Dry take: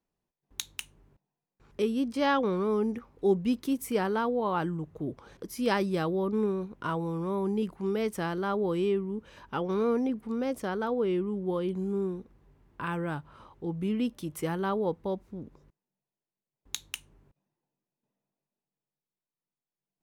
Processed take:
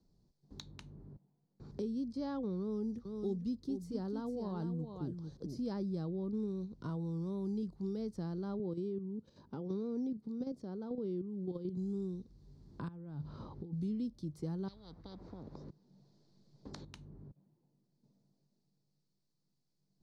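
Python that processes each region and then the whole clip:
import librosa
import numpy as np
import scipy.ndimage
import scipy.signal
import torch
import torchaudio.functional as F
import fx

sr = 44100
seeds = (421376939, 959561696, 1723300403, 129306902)

y = fx.chain(x, sr, fx.notch(hz=2300.0, q=10.0),
    fx.echo_single(ms=449, db=-9.0), at=(2.6, 5.6))
y = fx.chain(y, sr, fx.highpass(hz=230.0, slope=12),
    fx.tilt_eq(slope=-2.5),
    fx.level_steps(step_db=9), at=(8.59, 11.77))
y = fx.chain(y, sr, fx.over_compress(threshold_db=-44.0, ratio=-1.0),
    fx.air_absorb(metres=100.0), at=(12.88, 13.73))
y = fx.chain(y, sr, fx.lowpass(hz=4900.0, slope=12),
    fx.spectral_comp(ratio=10.0), at=(14.68, 16.85))
y = fx.curve_eq(y, sr, hz=(150.0, 2800.0, 4400.0, 13000.0), db=(0, -28, -4, -29))
y = fx.band_squash(y, sr, depth_pct=70)
y = y * 10.0 ** (-3.0 / 20.0)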